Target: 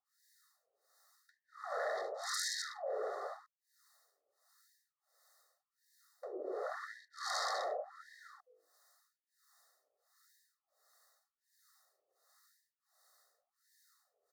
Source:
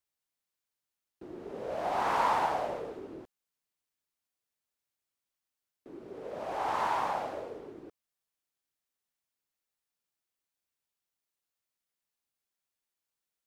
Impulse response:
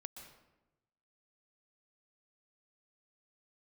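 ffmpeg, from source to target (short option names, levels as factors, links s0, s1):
-filter_complex "[0:a]highshelf=f=4900:g=-10,aeval=exprs='0.158*sin(PI/2*8.91*val(0)/0.158)':c=same,acrossover=split=640[s0][s1];[s0]aeval=exprs='val(0)*(1-1/2+1/2*cos(2*PI*1.5*n/s))':c=same[s2];[s1]aeval=exprs='val(0)*(1-1/2-1/2*cos(2*PI*1.5*n/s))':c=same[s3];[s2][s3]amix=inputs=2:normalize=0,asetrate=41454,aresample=44100,asuperstop=centerf=2700:order=8:qfactor=1.4,bandreject=f=50:t=h:w=6,bandreject=f=100:t=h:w=6,bandreject=f=150:t=h:w=6,bandreject=f=200:t=h:w=6,bandreject=f=250:t=h:w=6,bandreject=f=300:t=h:w=6,bandreject=f=350:t=h:w=6,bandreject=f=400:t=h:w=6,bandreject=f=450:t=h:w=6,bandreject=f=500:t=h:w=6,aecho=1:1:1.6:0.93,acompressor=threshold=0.00794:ratio=3,afftfilt=real='re*gte(b*sr/1024,280*pow(1600/280,0.5+0.5*sin(2*PI*0.89*pts/sr)))':imag='im*gte(b*sr/1024,280*pow(1600/280,0.5+0.5*sin(2*PI*0.89*pts/sr)))':win_size=1024:overlap=0.75,volume=1.12"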